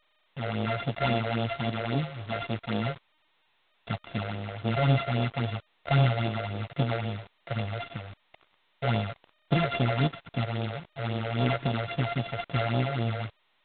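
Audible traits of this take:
a buzz of ramps at a fixed pitch in blocks of 64 samples
phaser sweep stages 6, 3.7 Hz, lowest notch 240–2,000 Hz
a quantiser's noise floor 8 bits, dither none
G.726

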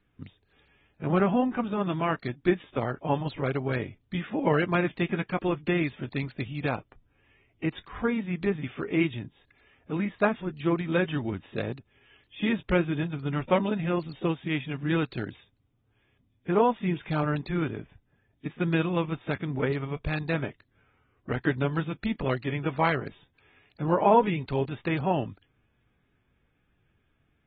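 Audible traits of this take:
AAC

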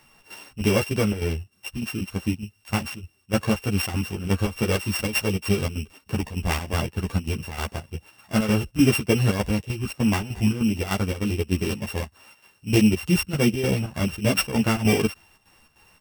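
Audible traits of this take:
a buzz of ramps at a fixed pitch in blocks of 16 samples
chopped level 3.3 Hz, depth 65%, duty 70%
a shimmering, thickened sound

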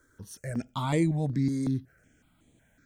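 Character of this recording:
notches that jump at a steady rate 5.4 Hz 730–5,300 Hz

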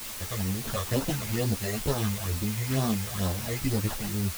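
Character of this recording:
aliases and images of a low sample rate 2,300 Hz, jitter 0%
phaser sweep stages 12, 2.2 Hz, lowest notch 260–2,700 Hz
a quantiser's noise floor 6 bits, dither triangular
a shimmering, thickened sound

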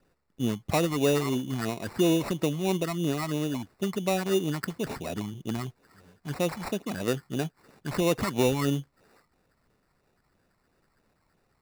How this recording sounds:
phaser sweep stages 12, 3 Hz, lowest notch 470–2,900 Hz
aliases and images of a low sample rate 3,200 Hz, jitter 0%

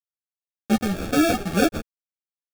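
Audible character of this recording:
a quantiser's noise floor 6 bits, dither none
phaser sweep stages 6, 2 Hz, lowest notch 520–1,300 Hz
aliases and images of a low sample rate 1,000 Hz, jitter 0%
a shimmering, thickened sound

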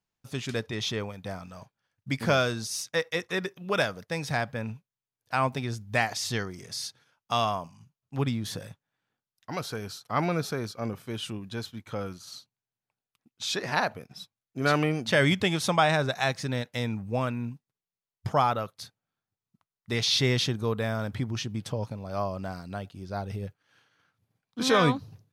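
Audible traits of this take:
background noise floor −94 dBFS
spectral slope −4.5 dB per octave

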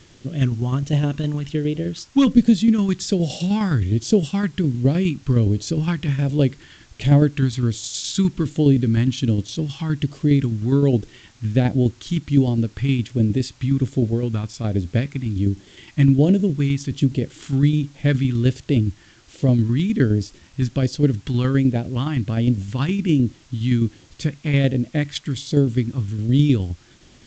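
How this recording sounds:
tremolo saw down 9.7 Hz, depth 50%
phaser sweep stages 2, 1.3 Hz, lowest notch 540–1,200 Hz
a quantiser's noise floor 10 bits, dither triangular
G.722

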